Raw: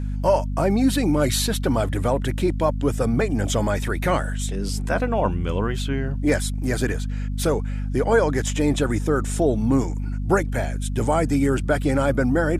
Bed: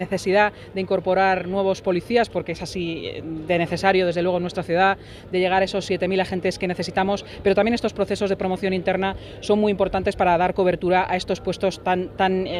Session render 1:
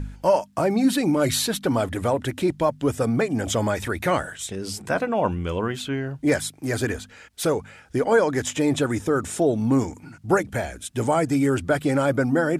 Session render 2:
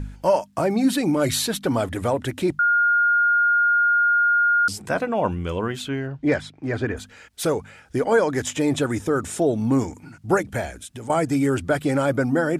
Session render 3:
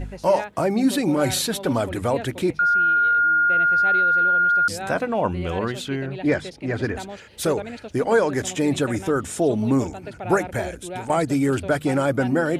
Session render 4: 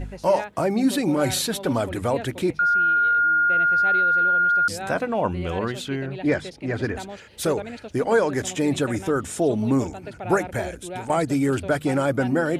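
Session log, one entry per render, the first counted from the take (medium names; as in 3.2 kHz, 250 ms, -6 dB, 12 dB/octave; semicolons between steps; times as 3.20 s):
de-hum 50 Hz, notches 5
2.59–4.68 s: bleep 1.42 kHz -15 dBFS; 6.06–6.96 s: low-pass 4.4 kHz -> 2.2 kHz; 10.70–11.10 s: compression, threshold -33 dBFS
add bed -14.5 dB
trim -1 dB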